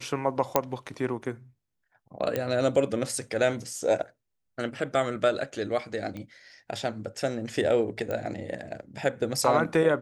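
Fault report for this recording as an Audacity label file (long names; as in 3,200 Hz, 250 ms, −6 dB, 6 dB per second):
0.560000	0.560000	click −6 dBFS
2.360000	2.360000	click −14 dBFS
6.170000	6.170000	click −26 dBFS
8.110000	8.110000	click −19 dBFS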